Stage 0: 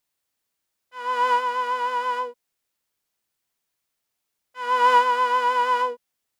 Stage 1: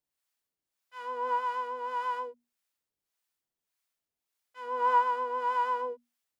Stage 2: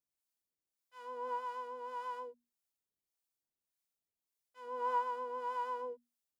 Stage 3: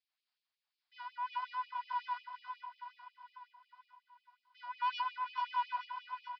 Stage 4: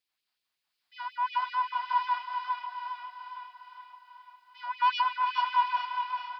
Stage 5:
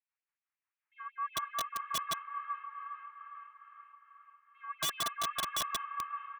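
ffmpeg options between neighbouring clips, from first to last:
-filter_complex "[0:a]bandreject=f=60:t=h:w=6,bandreject=f=120:t=h:w=6,bandreject=f=180:t=h:w=6,bandreject=f=240:t=h:w=6,acrossover=split=660|1300[s0][s1][s2];[s2]acompressor=threshold=0.01:ratio=6[s3];[s0][s1][s3]amix=inputs=3:normalize=0,acrossover=split=640[s4][s5];[s4]aeval=exprs='val(0)*(1-0.7/2+0.7/2*cos(2*PI*1.7*n/s))':c=same[s6];[s5]aeval=exprs='val(0)*(1-0.7/2-0.7/2*cos(2*PI*1.7*n/s))':c=same[s7];[s6][s7]amix=inputs=2:normalize=0,volume=0.631"
-af "equalizer=f=1800:t=o:w=2.4:g=-7.5,volume=0.596"
-af "aresample=11025,asoftclip=type=tanh:threshold=0.0188,aresample=44100,aecho=1:1:433|866|1299|1732|2165|2598|3031:0.447|0.255|0.145|0.0827|0.0472|0.0269|0.0153,afftfilt=real='re*gte(b*sr/1024,570*pow(2300/570,0.5+0.5*sin(2*PI*5.5*pts/sr)))':imag='im*gte(b*sr/1024,570*pow(2300/570,0.5+0.5*sin(2*PI*5.5*pts/sr)))':win_size=1024:overlap=0.75,volume=2.37"
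-af "dynaudnorm=f=320:g=5:m=1.58,aecho=1:1:407|814|1221|1628|2035|2442:0.422|0.211|0.105|0.0527|0.0264|0.0132,volume=1.88"
-filter_complex "[0:a]highpass=f=590:t=q:w=0.5412,highpass=f=590:t=q:w=1.307,lowpass=f=2300:t=q:w=0.5176,lowpass=f=2300:t=q:w=0.7071,lowpass=f=2300:t=q:w=1.932,afreqshift=150,asplit=5[s0][s1][s2][s3][s4];[s1]adelay=425,afreqshift=59,volume=0.178[s5];[s2]adelay=850,afreqshift=118,volume=0.0708[s6];[s3]adelay=1275,afreqshift=177,volume=0.0285[s7];[s4]adelay=1700,afreqshift=236,volume=0.0114[s8];[s0][s5][s6][s7][s8]amix=inputs=5:normalize=0,aeval=exprs='(mod(11.2*val(0)+1,2)-1)/11.2':c=same,volume=0.447"

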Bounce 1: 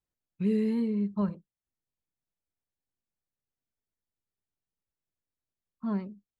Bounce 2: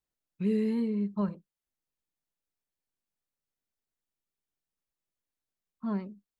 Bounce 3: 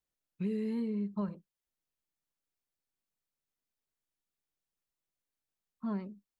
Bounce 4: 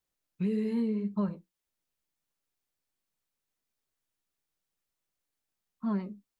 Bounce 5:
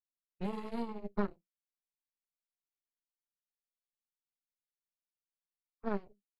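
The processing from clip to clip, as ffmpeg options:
-af "equalizer=f=93:t=o:w=1.1:g=-7.5"
-af "acompressor=threshold=0.0355:ratio=6,volume=0.841"
-af "flanger=delay=9.8:depth=4.1:regen=-55:speed=1.7:shape=triangular,volume=2.51"
-af "aeval=exprs='0.0841*(cos(1*acos(clip(val(0)/0.0841,-1,1)))-cos(1*PI/2))+0.0266*(cos(2*acos(clip(val(0)/0.0841,-1,1)))-cos(2*PI/2))+0.0299*(cos(3*acos(clip(val(0)/0.0841,-1,1)))-cos(3*PI/2))+0.00168*(cos(6*acos(clip(val(0)/0.0841,-1,1)))-cos(6*PI/2))':c=same,volume=0.794"

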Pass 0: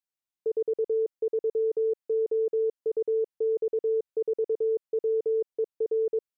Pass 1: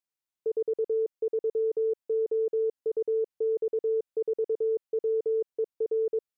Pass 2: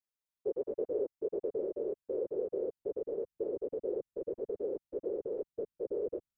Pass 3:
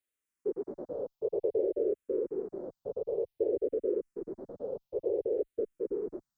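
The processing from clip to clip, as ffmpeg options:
-af "acontrast=26,volume=0.501"
-af "asubboost=boost=8:cutoff=160,afftfilt=real='hypot(re,im)*cos(2*PI*random(0))':imag='hypot(re,im)*sin(2*PI*random(1))':win_size=512:overlap=0.75,volume=1.12"
-filter_complex "[0:a]asplit=2[s0][s1];[s1]afreqshift=-0.55[s2];[s0][s2]amix=inputs=2:normalize=1,volume=2.11"

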